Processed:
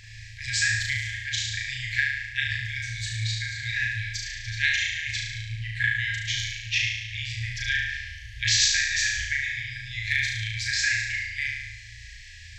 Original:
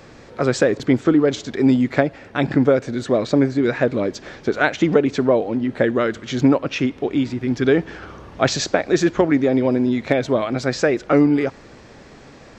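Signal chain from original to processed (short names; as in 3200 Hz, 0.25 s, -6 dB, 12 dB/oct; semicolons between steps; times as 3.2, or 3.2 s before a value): FFT band-reject 120–1600 Hz; flutter echo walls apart 6.2 m, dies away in 1 s; gain +1 dB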